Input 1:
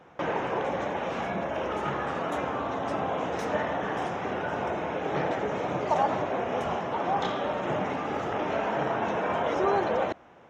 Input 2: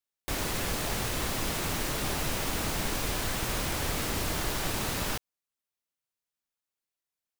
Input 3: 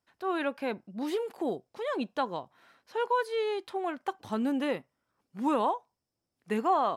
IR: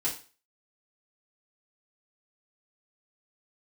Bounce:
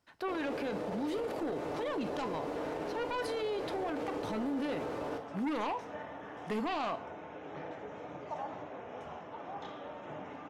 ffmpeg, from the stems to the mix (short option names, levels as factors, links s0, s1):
-filter_complex "[0:a]adelay=2400,volume=0.133,asplit=2[s0][s1];[s1]volume=0.266[s2];[1:a]bandpass=f=490:t=q:w=2.1:csg=0,volume=0.944,asplit=2[s3][s4];[s4]volume=0.596[s5];[2:a]aeval=exprs='0.141*(cos(1*acos(clip(val(0)/0.141,-1,1)))-cos(1*PI/2))+0.0501*(cos(5*acos(clip(val(0)/0.141,-1,1)))-cos(5*PI/2))':c=same,volume=0.75,asplit=2[s6][s7];[s7]volume=0.112[s8];[s0][s6]amix=inputs=2:normalize=0,highshelf=f=9300:g=-10,alimiter=level_in=1.58:limit=0.0631:level=0:latency=1,volume=0.631,volume=1[s9];[3:a]atrim=start_sample=2205[s10];[s2][s5][s8]amix=inputs=3:normalize=0[s11];[s11][s10]afir=irnorm=-1:irlink=0[s12];[s3][s9][s12]amix=inputs=3:normalize=0,alimiter=level_in=1.68:limit=0.0631:level=0:latency=1:release=28,volume=0.596"